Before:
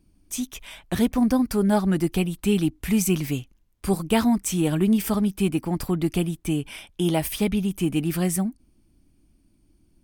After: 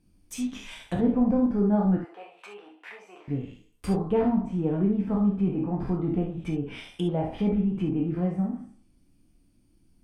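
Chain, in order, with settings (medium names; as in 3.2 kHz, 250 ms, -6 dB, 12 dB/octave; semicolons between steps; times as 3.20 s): spectral sustain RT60 0.49 s; low-pass that closes with the level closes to 850 Hz, closed at -20.5 dBFS; 1.97–3.28 s: high-pass 650 Hz 24 dB/octave; gated-style reverb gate 90 ms flat, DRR 1 dB; trim -5.5 dB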